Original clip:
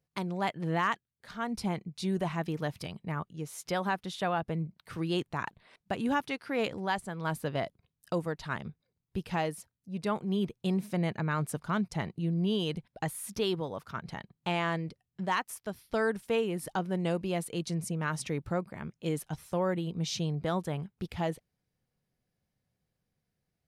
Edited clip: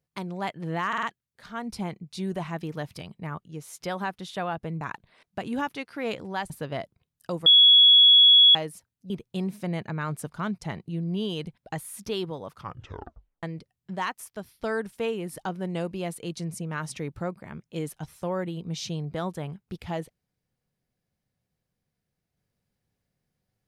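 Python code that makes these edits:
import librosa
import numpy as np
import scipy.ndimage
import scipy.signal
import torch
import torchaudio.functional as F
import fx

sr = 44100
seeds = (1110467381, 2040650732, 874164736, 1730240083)

y = fx.edit(x, sr, fx.stutter(start_s=0.88, slice_s=0.05, count=4),
    fx.cut(start_s=4.66, length_s=0.68),
    fx.cut(start_s=7.03, length_s=0.3),
    fx.bleep(start_s=8.29, length_s=1.09, hz=3360.0, db=-11.5),
    fx.cut(start_s=9.93, length_s=0.47),
    fx.tape_stop(start_s=13.83, length_s=0.9), tone=tone)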